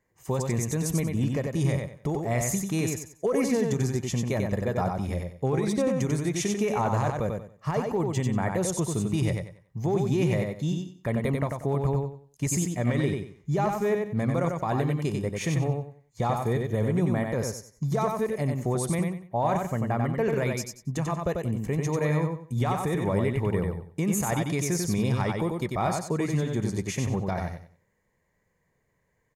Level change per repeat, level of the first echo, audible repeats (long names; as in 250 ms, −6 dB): −11.5 dB, −4.0 dB, 3